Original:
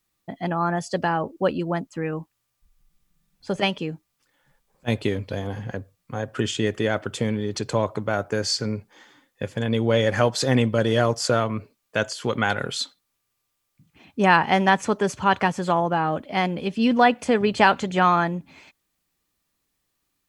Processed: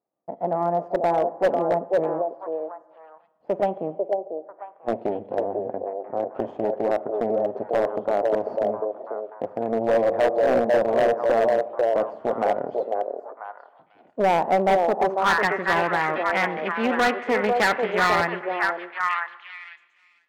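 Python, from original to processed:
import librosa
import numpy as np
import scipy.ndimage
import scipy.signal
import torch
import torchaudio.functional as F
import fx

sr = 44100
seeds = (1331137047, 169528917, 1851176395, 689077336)

y = fx.notch(x, sr, hz=1600.0, q=18.0)
y = np.maximum(y, 0.0)
y = fx.dynamic_eq(y, sr, hz=2900.0, q=1.1, threshold_db=-37.0, ratio=4.0, max_db=-3)
y = scipy.signal.sosfilt(scipy.signal.butter(2, 240.0, 'highpass', fs=sr, output='sos'), y)
y = fx.high_shelf(y, sr, hz=6000.0, db=-11.5, at=(6.62, 8.62))
y = fx.echo_stepped(y, sr, ms=495, hz=510.0, octaves=1.4, feedback_pct=70, wet_db=-1)
y = fx.filter_sweep_lowpass(y, sr, from_hz=670.0, to_hz=2000.0, start_s=14.89, end_s=15.45, q=3.0)
y = fx.rev_schroeder(y, sr, rt60_s=1.2, comb_ms=31, drr_db=16.0)
y = np.clip(y, -10.0 ** (-16.0 / 20.0), 10.0 ** (-16.0 / 20.0))
y = y * 10.0 ** (1.5 / 20.0)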